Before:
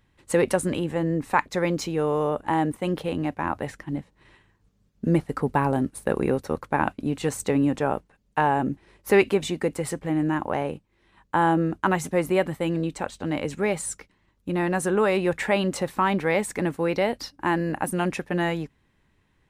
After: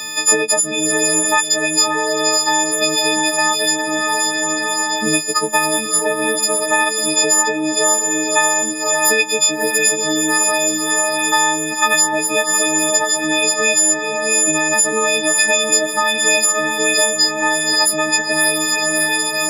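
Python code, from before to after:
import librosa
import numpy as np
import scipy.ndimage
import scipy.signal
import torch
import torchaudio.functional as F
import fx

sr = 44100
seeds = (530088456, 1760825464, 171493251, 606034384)

p1 = fx.freq_snap(x, sr, grid_st=6)
p2 = scipy.signal.sosfilt(scipy.signal.butter(2, 310.0, 'highpass', fs=sr, output='sos'), p1)
p3 = fx.peak_eq(p2, sr, hz=6000.0, db=15.0, octaves=1.1)
p4 = p3 + fx.echo_diffused(p3, sr, ms=605, feedback_pct=43, wet_db=-6, dry=0)
p5 = fx.band_squash(p4, sr, depth_pct=100)
y = F.gain(torch.from_numpy(p5), 1.5).numpy()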